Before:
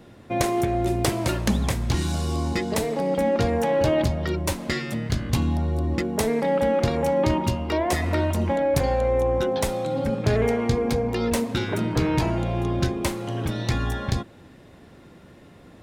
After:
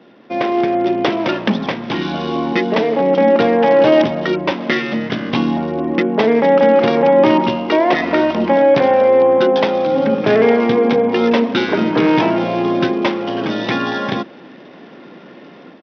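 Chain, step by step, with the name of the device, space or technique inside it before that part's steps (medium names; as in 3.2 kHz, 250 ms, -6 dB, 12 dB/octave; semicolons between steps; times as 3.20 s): Bluetooth headset (high-pass 200 Hz 24 dB/octave; level rider gain up to 8.5 dB; resampled via 8 kHz; trim +3.5 dB; SBC 64 kbps 44.1 kHz)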